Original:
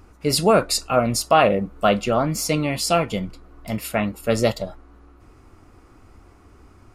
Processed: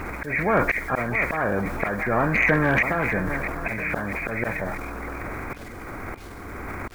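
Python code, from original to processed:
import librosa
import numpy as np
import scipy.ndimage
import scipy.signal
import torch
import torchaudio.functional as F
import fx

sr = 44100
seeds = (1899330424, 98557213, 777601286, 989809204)

p1 = fx.freq_compress(x, sr, knee_hz=1400.0, ratio=4.0)
p2 = fx.low_shelf(p1, sr, hz=140.0, db=2.5)
p3 = fx.auto_swell(p2, sr, attack_ms=621.0)
p4 = fx.quant_dither(p3, sr, seeds[0], bits=12, dither='none')
p5 = p4 + fx.echo_feedback(p4, sr, ms=651, feedback_pct=39, wet_db=-22, dry=0)
p6 = fx.transient(p5, sr, attack_db=-2, sustain_db=6)
p7 = fx.spectral_comp(p6, sr, ratio=2.0)
y = F.gain(torch.from_numpy(p7), 2.0).numpy()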